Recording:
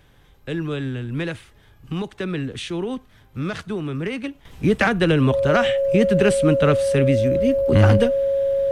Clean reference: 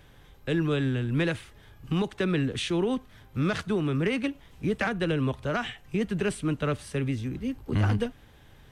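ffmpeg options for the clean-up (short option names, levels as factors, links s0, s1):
-af "bandreject=f=550:w=30,asetnsamples=n=441:p=0,asendcmd='4.45 volume volume -9.5dB',volume=1"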